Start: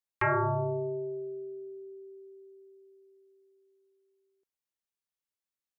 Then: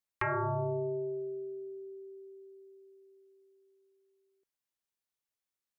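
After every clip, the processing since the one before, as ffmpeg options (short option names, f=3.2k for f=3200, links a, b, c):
-af "acompressor=threshold=-30dB:ratio=6"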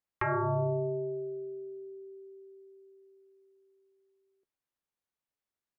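-filter_complex "[0:a]highshelf=f=2.7k:g=-11.5,asplit=2[a][b];[b]adelay=14,volume=-12.5dB[c];[a][c]amix=inputs=2:normalize=0,volume=3dB"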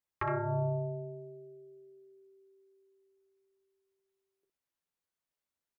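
-af "aecho=1:1:12|63:0.668|0.501,volume=-3dB"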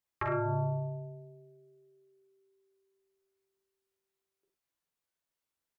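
-filter_complex "[0:a]asplit=2[a][b];[b]adelay=45,volume=-4dB[c];[a][c]amix=inputs=2:normalize=0"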